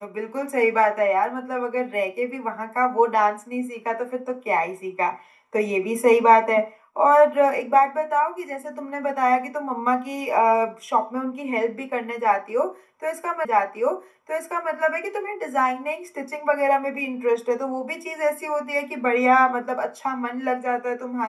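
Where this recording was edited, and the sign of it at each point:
13.45 s: repeat of the last 1.27 s

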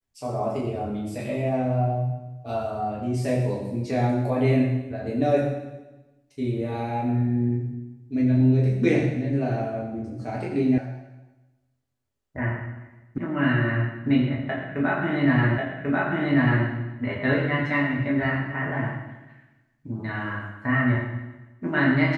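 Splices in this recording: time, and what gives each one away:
10.78 s: sound stops dead
13.18 s: sound stops dead
15.58 s: repeat of the last 1.09 s

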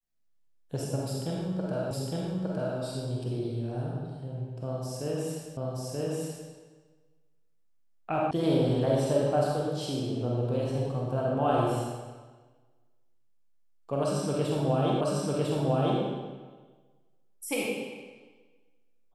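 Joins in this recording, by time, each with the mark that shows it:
1.91 s: repeat of the last 0.86 s
5.57 s: repeat of the last 0.93 s
8.31 s: sound stops dead
15.01 s: repeat of the last 1 s

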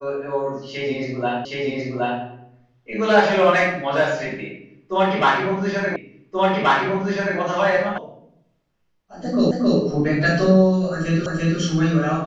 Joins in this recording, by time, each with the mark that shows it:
1.45 s: repeat of the last 0.77 s
5.96 s: repeat of the last 1.43 s
7.98 s: sound stops dead
9.51 s: repeat of the last 0.27 s
11.26 s: repeat of the last 0.34 s

